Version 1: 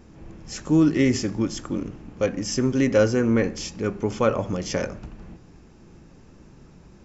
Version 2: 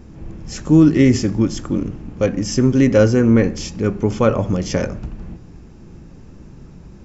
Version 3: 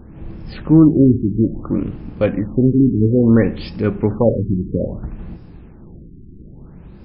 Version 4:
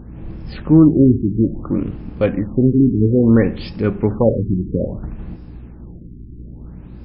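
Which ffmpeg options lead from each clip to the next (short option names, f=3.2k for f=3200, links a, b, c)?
-af "lowshelf=f=290:g=8,volume=3dB"
-af "afftfilt=real='re*lt(b*sr/1024,390*pow(5500/390,0.5+0.5*sin(2*PI*0.6*pts/sr)))':imag='im*lt(b*sr/1024,390*pow(5500/390,0.5+0.5*sin(2*PI*0.6*pts/sr)))':win_size=1024:overlap=0.75,volume=1dB"
-af "aeval=exprs='val(0)+0.0158*(sin(2*PI*60*n/s)+sin(2*PI*2*60*n/s)/2+sin(2*PI*3*60*n/s)/3+sin(2*PI*4*60*n/s)/4+sin(2*PI*5*60*n/s)/5)':c=same"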